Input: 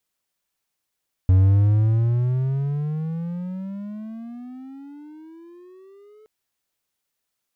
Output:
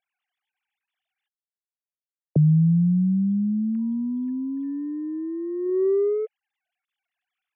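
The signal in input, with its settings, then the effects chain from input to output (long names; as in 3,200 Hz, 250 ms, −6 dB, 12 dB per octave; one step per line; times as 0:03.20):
pitch glide with a swell triangle, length 4.97 s, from 91.7 Hz, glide +27 semitones, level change −36 dB, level −9 dB
three sine waves on the formant tracks
parametric band 950 Hz −9.5 dB 0.58 octaves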